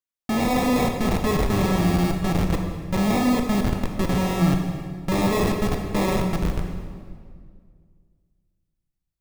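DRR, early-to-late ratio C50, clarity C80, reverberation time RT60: 3.5 dB, 5.0 dB, 6.0 dB, 2.0 s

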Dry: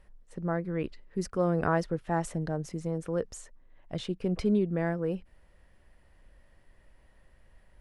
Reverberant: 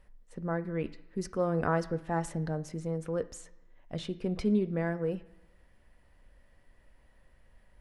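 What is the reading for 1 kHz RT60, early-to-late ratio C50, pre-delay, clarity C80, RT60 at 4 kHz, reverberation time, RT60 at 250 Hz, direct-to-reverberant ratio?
1.0 s, 16.5 dB, 3 ms, 19.0 dB, 0.95 s, 1.0 s, 0.85 s, 9.5 dB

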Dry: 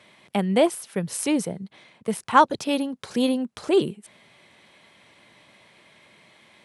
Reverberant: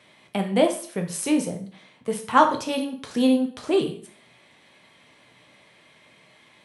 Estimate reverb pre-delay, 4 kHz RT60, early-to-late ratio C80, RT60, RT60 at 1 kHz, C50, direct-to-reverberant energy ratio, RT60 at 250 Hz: 5 ms, 0.45 s, 14.5 dB, 0.45 s, 0.45 s, 10.0 dB, 3.5 dB, 0.50 s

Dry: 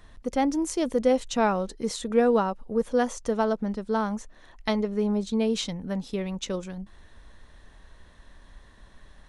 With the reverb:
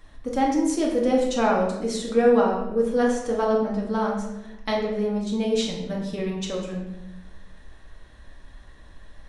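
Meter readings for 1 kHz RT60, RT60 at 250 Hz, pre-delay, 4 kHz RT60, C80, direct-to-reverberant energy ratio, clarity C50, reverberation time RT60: 0.80 s, 1.4 s, 4 ms, 0.70 s, 6.5 dB, -2.5 dB, 4.0 dB, 1.0 s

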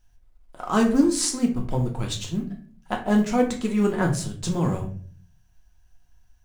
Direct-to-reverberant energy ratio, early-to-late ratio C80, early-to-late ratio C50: 1.0 dB, 14.0 dB, 9.5 dB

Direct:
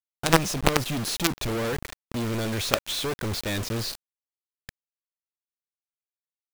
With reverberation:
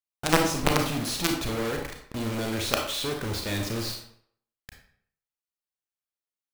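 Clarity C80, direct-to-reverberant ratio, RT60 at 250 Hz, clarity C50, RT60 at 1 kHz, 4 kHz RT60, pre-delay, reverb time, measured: 8.5 dB, 2.0 dB, 0.60 s, 5.0 dB, 0.60 s, 0.45 s, 29 ms, 0.60 s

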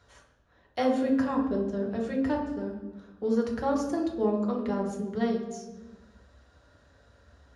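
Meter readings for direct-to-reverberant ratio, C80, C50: -1.0 dB, 8.5 dB, 5.5 dB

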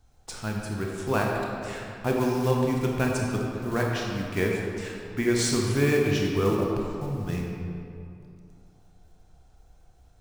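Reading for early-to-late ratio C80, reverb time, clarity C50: 2.0 dB, 2.7 s, 0.0 dB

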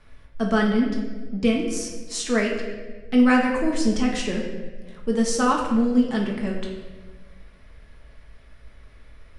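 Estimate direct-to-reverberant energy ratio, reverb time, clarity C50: -1.5 dB, 1.4 s, 3.5 dB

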